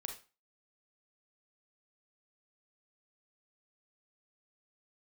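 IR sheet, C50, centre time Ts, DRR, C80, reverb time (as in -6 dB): 7.5 dB, 18 ms, 3.5 dB, 14.0 dB, 0.30 s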